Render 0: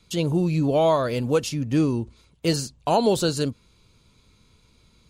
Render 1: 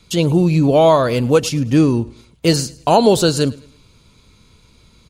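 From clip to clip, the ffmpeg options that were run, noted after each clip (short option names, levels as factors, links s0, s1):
-af "aecho=1:1:106|212|318:0.0794|0.0286|0.0103,volume=2.51"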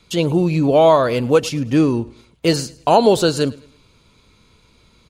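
-af "bass=f=250:g=-5,treble=f=4000:g=-5"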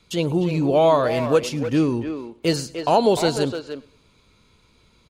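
-filter_complex "[0:a]asplit=2[s0][s1];[s1]adelay=300,highpass=300,lowpass=3400,asoftclip=type=hard:threshold=0.299,volume=0.447[s2];[s0][s2]amix=inputs=2:normalize=0,volume=0.596"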